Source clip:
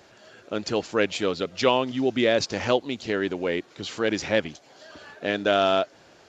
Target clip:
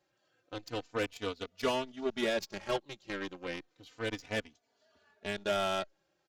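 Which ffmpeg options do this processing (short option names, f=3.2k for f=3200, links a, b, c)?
-filter_complex "[0:a]aeval=exprs='0.501*(cos(1*acos(clip(val(0)/0.501,-1,1)))-cos(1*PI/2))+0.0631*(cos(7*acos(clip(val(0)/0.501,-1,1)))-cos(7*PI/2))':c=same,asoftclip=type=tanh:threshold=-14dB,asplit=2[a][b];[b]adelay=3.3,afreqshift=-0.32[c];[a][c]amix=inputs=2:normalize=1,volume=-2.5dB"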